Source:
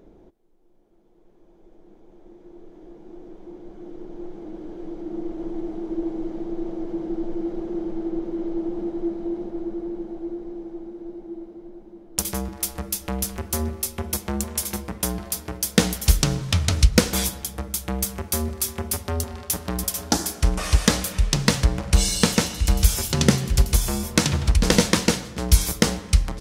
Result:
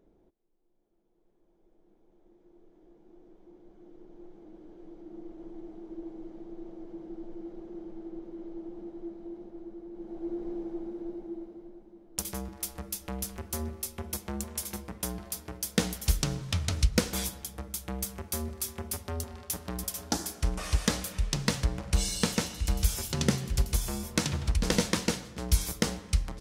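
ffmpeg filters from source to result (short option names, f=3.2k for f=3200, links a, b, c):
-af "volume=-1.5dB,afade=t=in:st=9.91:d=0.56:silence=0.237137,afade=t=out:st=10.99:d=0.89:silence=0.421697"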